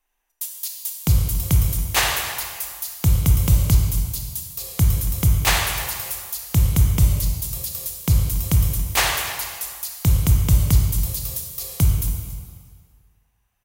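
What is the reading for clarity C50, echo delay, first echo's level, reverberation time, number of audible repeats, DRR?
3.0 dB, 0.28 s, -17.5 dB, 1.9 s, 1, 1.5 dB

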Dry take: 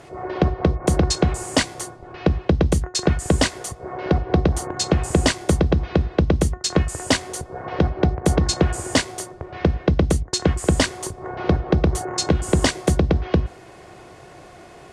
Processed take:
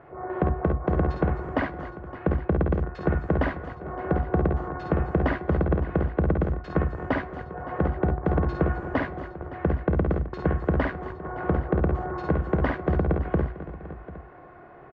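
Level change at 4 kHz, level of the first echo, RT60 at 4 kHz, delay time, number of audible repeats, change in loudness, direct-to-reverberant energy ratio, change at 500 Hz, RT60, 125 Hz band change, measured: -25.0 dB, -5.5 dB, none, 53 ms, 5, -5.5 dB, none, -4.5 dB, none, -5.0 dB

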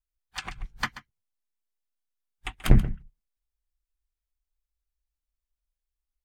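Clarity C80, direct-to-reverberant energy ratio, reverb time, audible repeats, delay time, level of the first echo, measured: none, none, none, 1, 0.133 s, -15.0 dB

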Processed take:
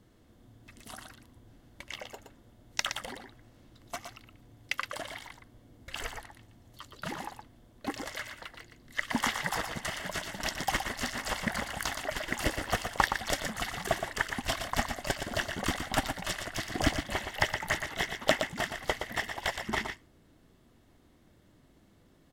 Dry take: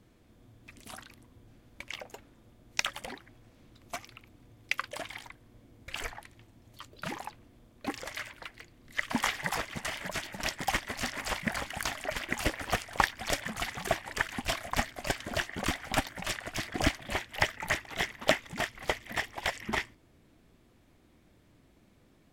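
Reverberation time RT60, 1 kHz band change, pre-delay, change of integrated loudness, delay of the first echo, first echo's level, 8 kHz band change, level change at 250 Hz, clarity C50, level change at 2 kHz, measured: none, +1.0 dB, none, 0.0 dB, 0.118 s, -7.0 dB, +1.0 dB, +1.0 dB, none, 0.0 dB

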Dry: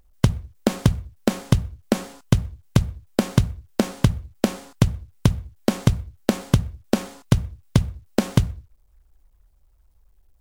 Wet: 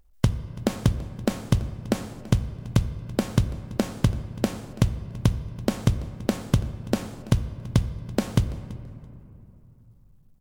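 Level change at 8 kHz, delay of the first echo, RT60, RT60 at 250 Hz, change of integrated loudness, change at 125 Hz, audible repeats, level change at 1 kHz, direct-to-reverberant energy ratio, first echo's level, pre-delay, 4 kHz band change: -4.5 dB, 0.333 s, 2.9 s, 3.4 s, -3.5 dB, -3.0 dB, 2, -4.0 dB, 11.5 dB, -20.5 dB, 3 ms, -4.5 dB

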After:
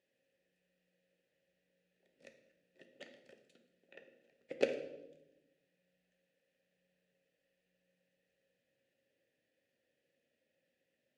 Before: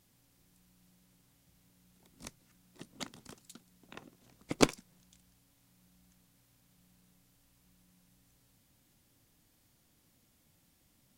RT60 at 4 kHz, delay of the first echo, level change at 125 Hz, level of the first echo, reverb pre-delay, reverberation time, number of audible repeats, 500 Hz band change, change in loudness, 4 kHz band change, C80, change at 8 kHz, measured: 0.75 s, none, -20.5 dB, none, 3 ms, 0.95 s, none, -1.5 dB, -2.5 dB, -13.5 dB, 11.5 dB, -22.5 dB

